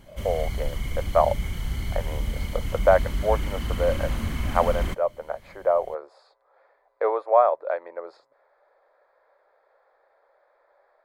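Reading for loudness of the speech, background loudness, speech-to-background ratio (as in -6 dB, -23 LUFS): -26.0 LUFS, -31.0 LUFS, 5.0 dB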